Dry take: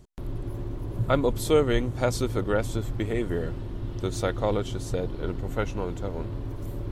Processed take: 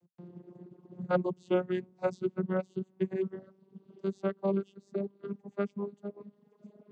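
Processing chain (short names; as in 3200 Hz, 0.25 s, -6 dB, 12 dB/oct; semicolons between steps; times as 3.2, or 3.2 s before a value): vocoder on a gliding note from F3, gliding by +3 st; reverb removal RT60 1.3 s; upward expander 1.5:1, over -46 dBFS; gain -1.5 dB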